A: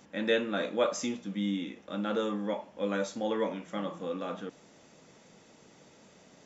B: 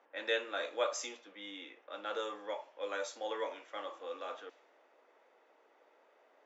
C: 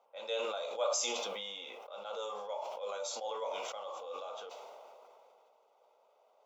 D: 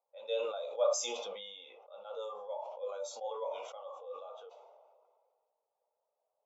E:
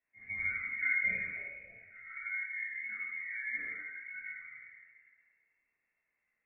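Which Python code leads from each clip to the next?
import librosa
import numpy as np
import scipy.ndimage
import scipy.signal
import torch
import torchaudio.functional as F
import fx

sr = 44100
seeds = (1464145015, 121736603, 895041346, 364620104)

y1 = scipy.signal.sosfilt(scipy.signal.bessel(8, 610.0, 'highpass', norm='mag', fs=sr, output='sos'), x)
y1 = fx.env_lowpass(y1, sr, base_hz=1400.0, full_db=-33.5)
y1 = y1 * librosa.db_to_amplitude(-2.5)
y2 = fx.fixed_phaser(y1, sr, hz=730.0, stages=4)
y2 = fx.sustainer(y2, sr, db_per_s=20.0)
y3 = fx.spectral_expand(y2, sr, expansion=1.5)
y3 = y3 * librosa.db_to_amplitude(2.5)
y4 = fx.dmg_crackle(y3, sr, seeds[0], per_s=390.0, level_db=-69.0)
y4 = fx.room_shoebox(y4, sr, seeds[1], volume_m3=550.0, walls='mixed', distance_m=3.9)
y4 = fx.freq_invert(y4, sr, carrier_hz=2700)
y4 = y4 * librosa.db_to_amplitude(-9.0)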